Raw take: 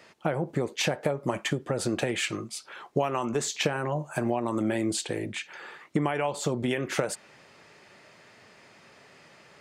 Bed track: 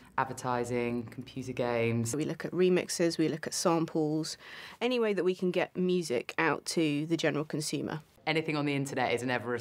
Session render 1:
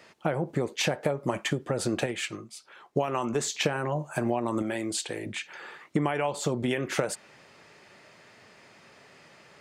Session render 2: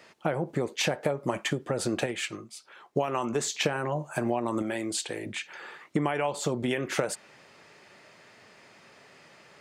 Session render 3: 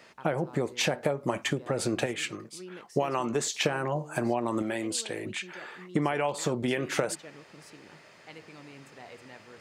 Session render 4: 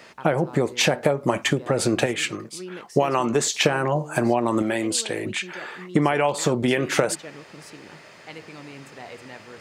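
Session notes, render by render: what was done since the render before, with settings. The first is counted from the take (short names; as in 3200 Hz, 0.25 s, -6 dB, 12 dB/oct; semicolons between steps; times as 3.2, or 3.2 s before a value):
2.06–3.08 upward expander, over -36 dBFS; 4.62–5.26 low shelf 410 Hz -7.5 dB
low shelf 130 Hz -4 dB
add bed track -18.5 dB
gain +7.5 dB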